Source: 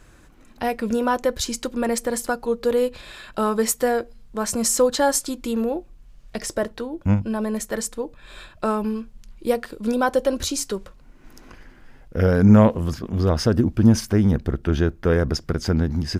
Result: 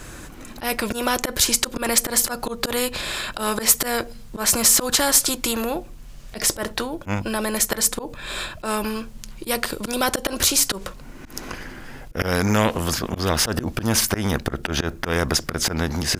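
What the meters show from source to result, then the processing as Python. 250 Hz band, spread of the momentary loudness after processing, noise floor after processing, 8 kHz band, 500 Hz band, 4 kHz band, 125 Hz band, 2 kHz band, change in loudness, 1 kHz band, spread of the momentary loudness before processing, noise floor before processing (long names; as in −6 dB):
−5.5 dB, 16 LU, −40 dBFS, +8.5 dB, −4.5 dB, +9.5 dB, −6.5 dB, +5.5 dB, +0.5 dB, 0.0 dB, 12 LU, −49 dBFS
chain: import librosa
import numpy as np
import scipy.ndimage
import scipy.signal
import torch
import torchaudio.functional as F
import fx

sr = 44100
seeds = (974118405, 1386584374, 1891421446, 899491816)

y = fx.auto_swell(x, sr, attack_ms=117.0)
y = fx.high_shelf(y, sr, hz=5400.0, db=6.5)
y = fx.spectral_comp(y, sr, ratio=2.0)
y = y * 10.0 ** (1.5 / 20.0)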